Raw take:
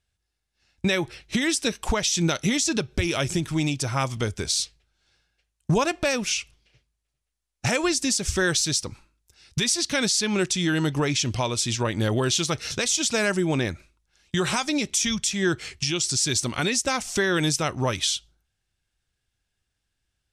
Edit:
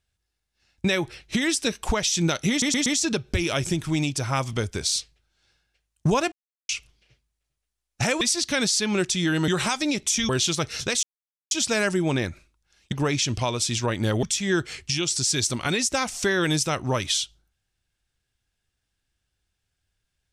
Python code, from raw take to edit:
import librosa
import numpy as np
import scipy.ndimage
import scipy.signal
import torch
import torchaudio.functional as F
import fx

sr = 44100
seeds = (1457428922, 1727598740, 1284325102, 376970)

y = fx.edit(x, sr, fx.stutter(start_s=2.5, slice_s=0.12, count=4),
    fx.silence(start_s=5.96, length_s=0.37),
    fx.cut(start_s=7.85, length_s=1.77),
    fx.swap(start_s=10.89, length_s=1.31, other_s=14.35, other_length_s=0.81),
    fx.insert_silence(at_s=12.94, length_s=0.48), tone=tone)